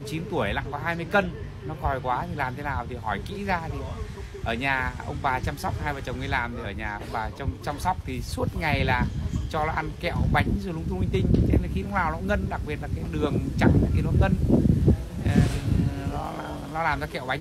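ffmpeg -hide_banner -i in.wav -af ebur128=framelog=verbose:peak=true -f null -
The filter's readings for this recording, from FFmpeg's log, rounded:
Integrated loudness:
  I:         -26.5 LUFS
  Threshold: -36.5 LUFS
Loudness range:
  LRA:         6.1 LU
  Threshold: -46.4 LUFS
  LRA low:   -29.4 LUFS
  LRA high:  -23.4 LUFS
True peak:
  Peak:       -6.1 dBFS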